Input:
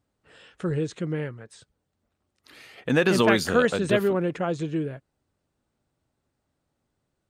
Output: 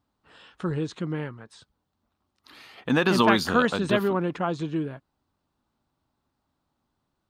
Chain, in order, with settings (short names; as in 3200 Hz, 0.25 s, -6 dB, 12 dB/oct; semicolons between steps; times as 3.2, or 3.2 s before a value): ten-band EQ 125 Hz -3 dB, 250 Hz +3 dB, 500 Hz -6 dB, 1000 Hz +8 dB, 2000 Hz -4 dB, 4000 Hz +4 dB, 8000 Hz -6 dB